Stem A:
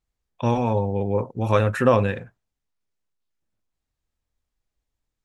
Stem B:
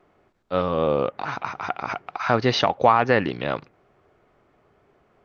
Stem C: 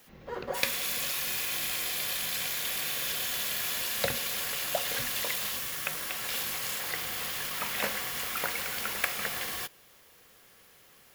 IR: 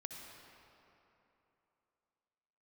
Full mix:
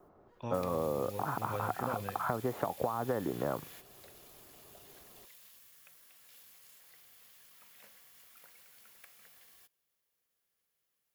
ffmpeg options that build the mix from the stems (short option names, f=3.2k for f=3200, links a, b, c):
-filter_complex "[0:a]volume=-17dB[a];[1:a]lowpass=f=1.3k:w=0.5412,lowpass=f=1.3k:w=1.3066,acompressor=threshold=-21dB:ratio=6,volume=0dB,asplit=2[b][c];[2:a]highshelf=f=5.2k:g=8.5,volume=-18.5dB[d];[c]apad=whole_len=491511[e];[d][e]sidechaingate=range=-12dB:threshold=-55dB:ratio=16:detection=peak[f];[a][b][f]amix=inputs=3:normalize=0,acrossover=split=310|2700[g][h][i];[g]acompressor=threshold=-39dB:ratio=4[j];[h]acompressor=threshold=-32dB:ratio=4[k];[i]acompressor=threshold=-51dB:ratio=4[l];[j][k][l]amix=inputs=3:normalize=0"